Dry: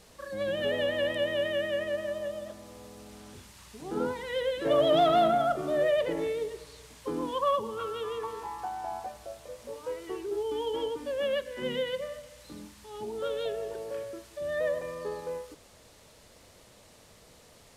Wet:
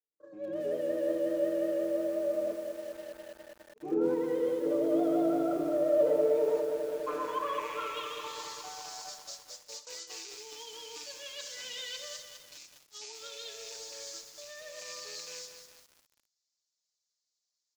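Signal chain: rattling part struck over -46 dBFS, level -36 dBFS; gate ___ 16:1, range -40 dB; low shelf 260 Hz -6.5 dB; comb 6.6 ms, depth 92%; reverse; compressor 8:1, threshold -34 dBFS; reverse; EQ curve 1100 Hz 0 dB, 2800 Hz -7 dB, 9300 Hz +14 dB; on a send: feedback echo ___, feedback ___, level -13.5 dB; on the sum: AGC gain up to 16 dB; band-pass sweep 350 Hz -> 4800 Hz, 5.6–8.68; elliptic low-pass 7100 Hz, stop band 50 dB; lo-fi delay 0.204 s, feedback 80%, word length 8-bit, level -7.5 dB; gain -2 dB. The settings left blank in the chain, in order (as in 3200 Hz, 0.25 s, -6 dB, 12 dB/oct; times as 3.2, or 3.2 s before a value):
-41 dBFS, 66 ms, 55%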